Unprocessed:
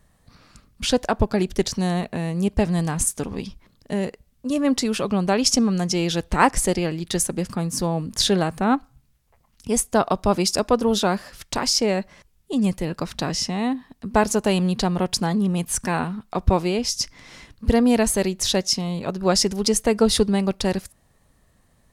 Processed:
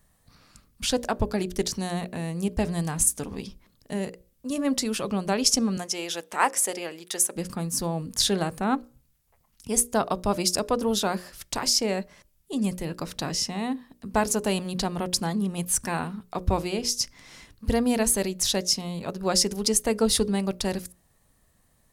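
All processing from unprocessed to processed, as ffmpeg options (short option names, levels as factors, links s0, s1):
-filter_complex "[0:a]asettb=1/sr,asplit=3[s0][s1][s2];[s0]atrim=end=5.774[s3];[s1]atrim=start=5.77:end=7.36,asetpts=PTS-STARTPTS,afade=t=in:d=0.004:c=qsin,afade=t=out:st=1.586:d=0.004:c=qsin,highpass=460,equalizer=f=4300:t=o:w=0.32:g=-5.5[s4];[s2]atrim=start=7.356[s5];[s3][s4]acrossfade=d=0.004:c1=hsin:c2=qsin[s6];[s6][s5]acrossfade=d=0.004:c1=qsin:c2=hsin,highshelf=f=8100:g=10.5,bandreject=f=60:t=h:w=6,bandreject=f=120:t=h:w=6,bandreject=f=180:t=h:w=6,bandreject=f=240:t=h:w=6,bandreject=f=300:t=h:w=6,bandreject=f=360:t=h:w=6,bandreject=f=420:t=h:w=6,bandreject=f=480:t=h:w=6,bandreject=f=540:t=h:w=6,bandreject=f=600:t=h:w=6,volume=0.562"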